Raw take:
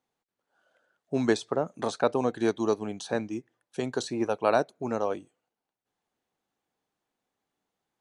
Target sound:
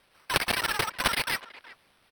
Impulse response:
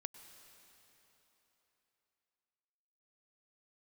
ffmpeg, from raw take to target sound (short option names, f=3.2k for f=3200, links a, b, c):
-filter_complex "[0:a]afreqshift=15,alimiter=limit=-17.5dB:level=0:latency=1,asoftclip=type=hard:threshold=-30dB,aemphasis=mode=production:type=riaa,acrusher=samples=24:mix=1:aa=0.000001,asetrate=167139,aresample=44100,asplit=2[a][b];[b]adelay=370,highpass=300,lowpass=3.4k,asoftclip=type=hard:threshold=-27.5dB,volume=-18dB[c];[a][c]amix=inputs=2:normalize=0,volume=7.5dB"